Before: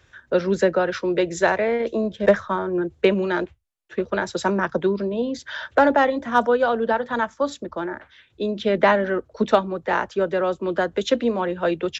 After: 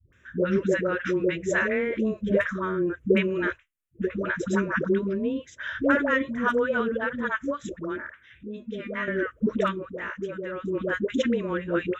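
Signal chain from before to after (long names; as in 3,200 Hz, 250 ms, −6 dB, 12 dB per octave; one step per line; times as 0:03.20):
0:09.65–0:10.56: downward compressor 5 to 1, threshold −25 dBFS, peak gain reduction 8.5 dB
phaser with its sweep stopped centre 1,900 Hz, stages 4
all-pass dispersion highs, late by 129 ms, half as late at 450 Hz
0:08.43–0:09.08: tuned comb filter 240 Hz, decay 0.16 s, harmonics all, mix 80%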